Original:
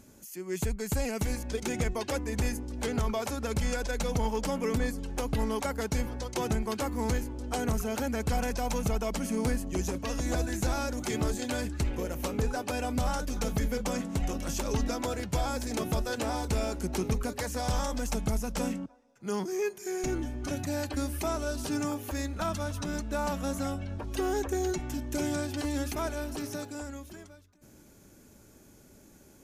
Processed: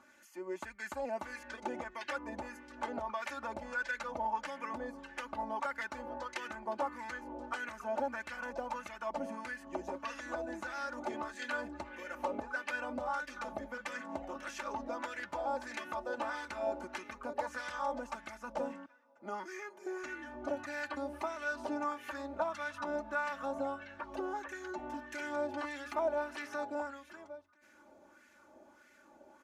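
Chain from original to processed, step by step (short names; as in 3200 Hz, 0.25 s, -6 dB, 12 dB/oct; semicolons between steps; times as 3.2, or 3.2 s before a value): compressor, threshold -32 dBFS, peak gain reduction 8 dB; comb 3.4 ms, depth 76%; LFO band-pass sine 1.6 Hz 690–1900 Hz; gain +6.5 dB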